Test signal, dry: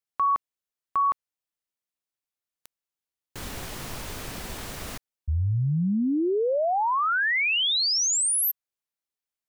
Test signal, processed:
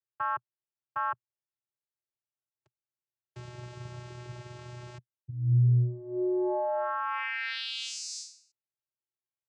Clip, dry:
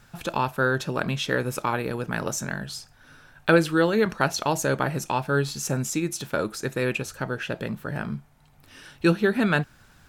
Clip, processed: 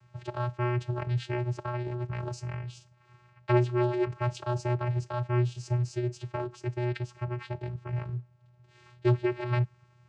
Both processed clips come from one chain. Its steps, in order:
channel vocoder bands 8, square 122 Hz
low-shelf EQ 230 Hz −6.5 dB

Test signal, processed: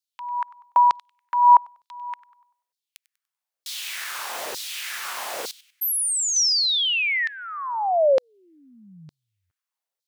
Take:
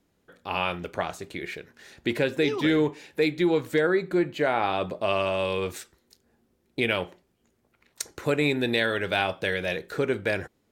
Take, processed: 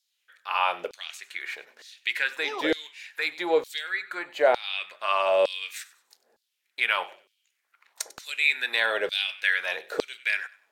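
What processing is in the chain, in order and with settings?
delay with a high-pass on its return 97 ms, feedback 33%, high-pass 1,400 Hz, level −18 dB
auto-filter high-pass saw down 1.1 Hz 470–4,600 Hz

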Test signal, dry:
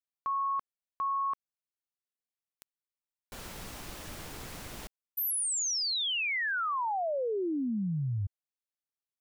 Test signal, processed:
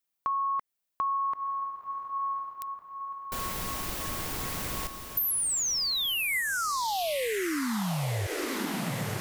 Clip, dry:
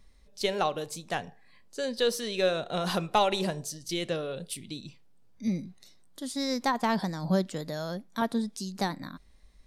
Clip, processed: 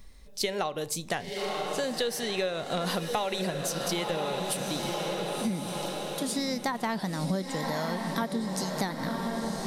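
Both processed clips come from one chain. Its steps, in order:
high-shelf EQ 12,000 Hz +9 dB
feedback delay with all-pass diffusion 1,030 ms, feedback 56%, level −8 dB
dynamic equaliser 2,000 Hz, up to +6 dB, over −56 dBFS, Q 6.8
downward compressor 6 to 1, threshold −35 dBFS
level +7.5 dB

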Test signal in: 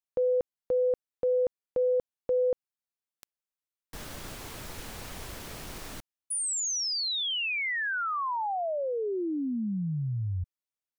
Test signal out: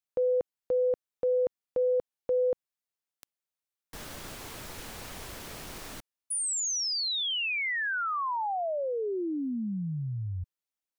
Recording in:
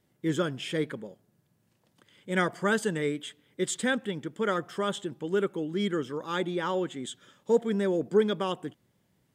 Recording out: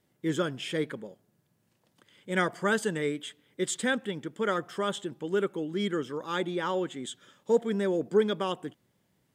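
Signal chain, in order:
low-shelf EQ 170 Hz −4 dB

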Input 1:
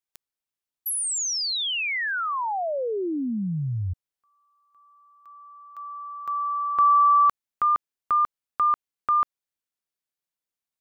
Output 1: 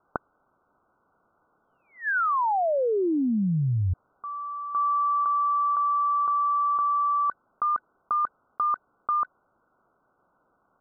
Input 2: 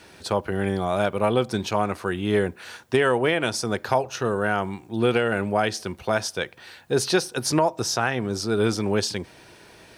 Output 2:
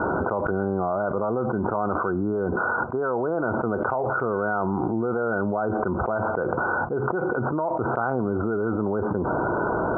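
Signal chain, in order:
Chebyshev low-pass filter 1,500 Hz, order 10
low-shelf EQ 190 Hz −8 dB
envelope flattener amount 100%
level −6 dB

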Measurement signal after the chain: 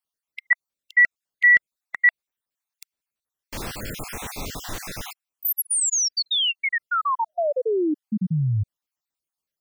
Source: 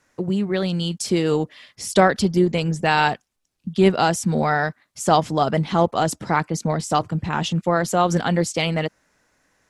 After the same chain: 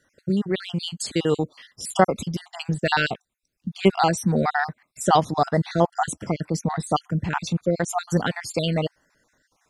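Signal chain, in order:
time-frequency cells dropped at random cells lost 46%

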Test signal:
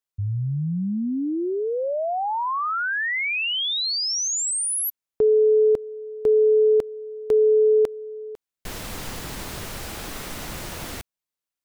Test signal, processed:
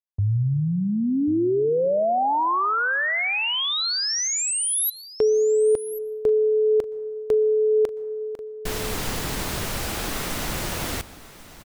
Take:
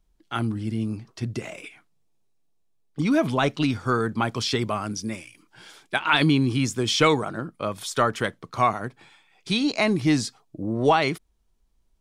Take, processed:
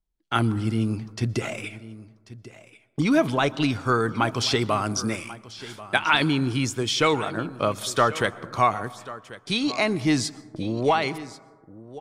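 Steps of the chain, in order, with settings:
noise gate −47 dBFS, range −20 dB
dynamic equaliser 190 Hz, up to −4 dB, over −35 dBFS, Q 1.2
speech leveller within 4 dB 0.5 s
on a send: single-tap delay 1,089 ms −17 dB
on the sum: dense smooth reverb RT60 1.5 s, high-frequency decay 0.25×, pre-delay 110 ms, DRR 19.5 dB
level +1.5 dB

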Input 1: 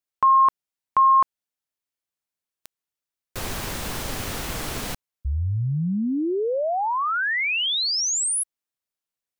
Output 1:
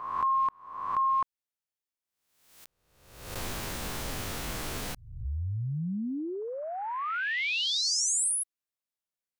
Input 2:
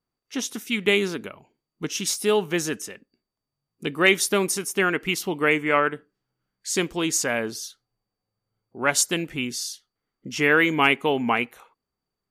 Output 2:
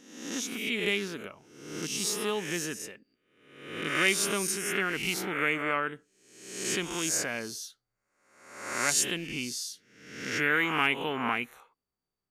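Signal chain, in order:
peak hold with a rise ahead of every peak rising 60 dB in 0.83 s
dynamic equaliser 570 Hz, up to −5 dB, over −30 dBFS, Q 0.78
level −8 dB

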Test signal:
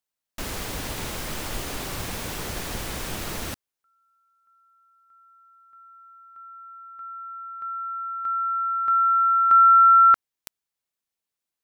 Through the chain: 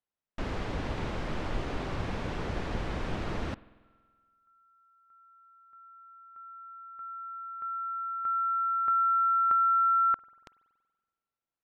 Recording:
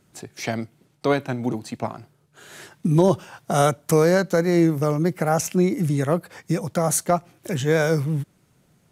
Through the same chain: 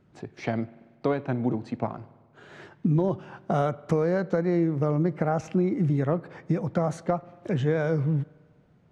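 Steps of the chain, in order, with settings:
downward compressor, threshold −20 dBFS
head-to-tape spacing loss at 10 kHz 31 dB
spring reverb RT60 1.5 s, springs 47 ms, chirp 30 ms, DRR 19.5 dB
level +1 dB

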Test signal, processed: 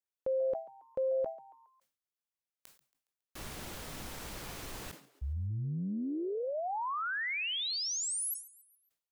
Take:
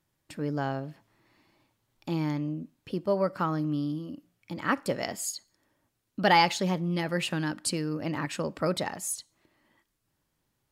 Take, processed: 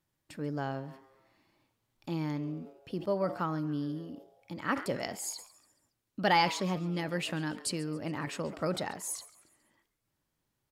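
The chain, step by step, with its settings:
on a send: echo with shifted repeats 138 ms, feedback 46%, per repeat +130 Hz, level −19 dB
on the sum: level that may fall only so fast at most 140 dB per second
level −4.5 dB

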